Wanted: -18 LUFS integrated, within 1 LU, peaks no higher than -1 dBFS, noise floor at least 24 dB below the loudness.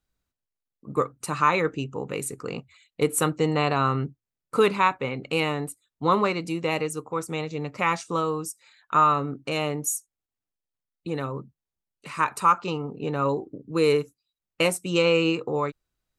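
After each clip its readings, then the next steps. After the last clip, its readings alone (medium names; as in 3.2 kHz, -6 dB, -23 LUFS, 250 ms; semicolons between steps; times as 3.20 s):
loudness -25.5 LUFS; peak level -7.0 dBFS; loudness target -18.0 LUFS
-> trim +7.5 dB; peak limiter -1 dBFS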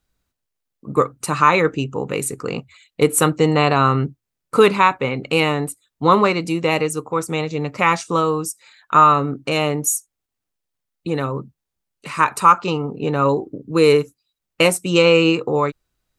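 loudness -18.0 LUFS; peak level -1.0 dBFS; noise floor -82 dBFS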